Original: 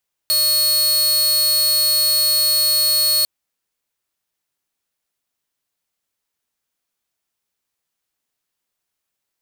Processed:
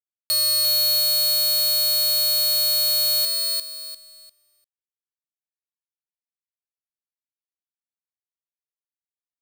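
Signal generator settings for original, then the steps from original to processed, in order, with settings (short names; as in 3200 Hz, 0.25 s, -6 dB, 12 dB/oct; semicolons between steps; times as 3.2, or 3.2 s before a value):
tone saw 4350 Hz -11.5 dBFS 2.95 s
limiter -15 dBFS; on a send: feedback echo 0.348 s, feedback 29%, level -4 dB; on the sum: crossover distortion -57.5 dBFS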